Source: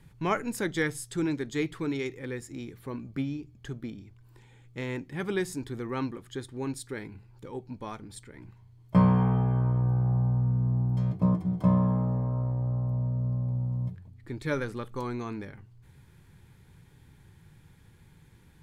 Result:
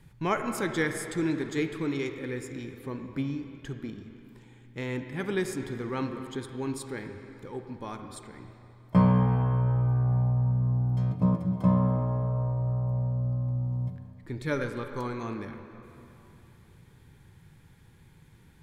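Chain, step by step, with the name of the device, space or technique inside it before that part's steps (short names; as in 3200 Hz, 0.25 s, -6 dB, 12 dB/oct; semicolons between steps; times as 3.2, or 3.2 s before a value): filtered reverb send (on a send: HPF 160 Hz 12 dB/oct + LPF 4000 Hz 12 dB/oct + reverb RT60 3.0 s, pre-delay 38 ms, DRR 6 dB)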